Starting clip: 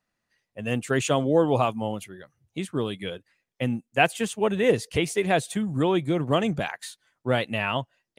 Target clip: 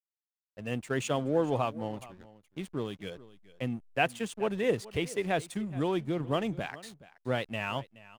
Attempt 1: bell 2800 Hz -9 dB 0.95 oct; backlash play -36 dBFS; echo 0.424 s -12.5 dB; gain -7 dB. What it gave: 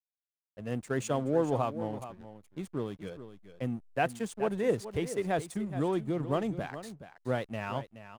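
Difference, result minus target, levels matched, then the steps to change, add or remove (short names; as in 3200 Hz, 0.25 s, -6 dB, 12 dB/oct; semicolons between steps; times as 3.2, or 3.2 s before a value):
echo-to-direct +6.5 dB; 2000 Hz band -3.5 dB
change: echo 0.424 s -19 dB; remove: bell 2800 Hz -9 dB 0.95 oct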